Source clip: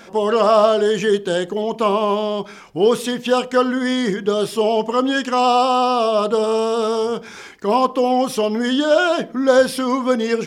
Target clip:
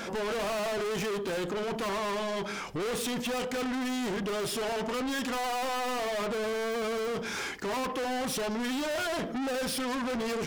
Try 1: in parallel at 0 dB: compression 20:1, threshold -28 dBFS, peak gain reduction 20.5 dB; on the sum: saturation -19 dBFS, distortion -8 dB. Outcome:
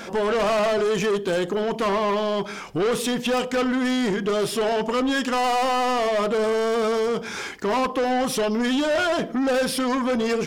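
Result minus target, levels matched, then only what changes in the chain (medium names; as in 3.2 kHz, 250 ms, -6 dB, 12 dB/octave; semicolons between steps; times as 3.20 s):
saturation: distortion -5 dB
change: saturation -30.5 dBFS, distortion -3 dB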